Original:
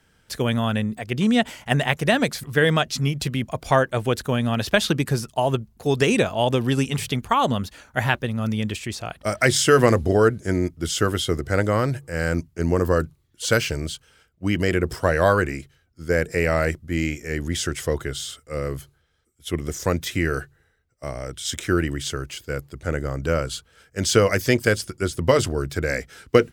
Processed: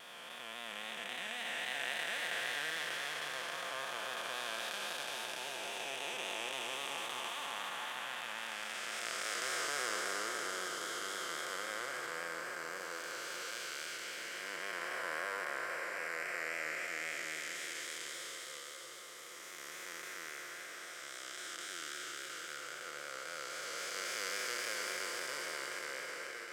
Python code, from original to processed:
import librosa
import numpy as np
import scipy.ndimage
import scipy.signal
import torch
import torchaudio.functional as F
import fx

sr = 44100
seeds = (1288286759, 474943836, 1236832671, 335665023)

p1 = fx.spec_blur(x, sr, span_ms=1120.0)
p2 = scipy.signal.sosfilt(scipy.signal.butter(2, 1100.0, 'highpass', fs=sr, output='sos'), p1)
p3 = p2 + 0.34 * np.pad(p2, (int(5.7 * sr / 1000.0), 0))[:len(p2)]
p4 = fx.vibrato(p3, sr, rate_hz=3.7, depth_cents=56.0)
p5 = p4 + fx.echo_single(p4, sr, ms=653, db=-7.5, dry=0)
y = p5 * 10.0 ** (-4.5 / 20.0)